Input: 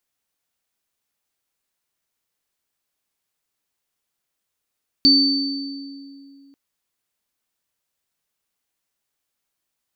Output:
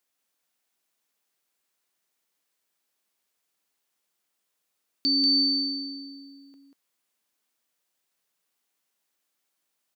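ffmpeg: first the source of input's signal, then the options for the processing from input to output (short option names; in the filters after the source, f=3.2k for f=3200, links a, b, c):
-f lavfi -i "aevalsrc='0.188*pow(10,-3*t/2.66)*sin(2*PI*277*t)+0.335*pow(10,-3*t/1.52)*sin(2*PI*4550*t)':d=1.49:s=44100"
-af "highpass=190,alimiter=limit=-17dB:level=0:latency=1,aecho=1:1:189:0.562"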